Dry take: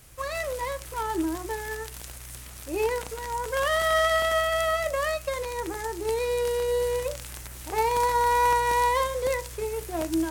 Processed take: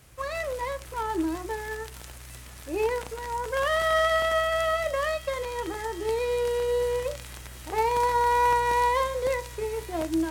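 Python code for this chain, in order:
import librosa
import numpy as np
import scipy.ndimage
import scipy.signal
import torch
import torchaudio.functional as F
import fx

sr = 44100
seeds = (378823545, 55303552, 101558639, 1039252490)

p1 = scipy.signal.sosfilt(scipy.signal.butter(2, 45.0, 'highpass', fs=sr, output='sos'), x)
p2 = fx.high_shelf(p1, sr, hz=5500.0, db=-7.5)
y = p2 + fx.echo_wet_highpass(p2, sr, ms=983, feedback_pct=60, hz=3300.0, wet_db=-10, dry=0)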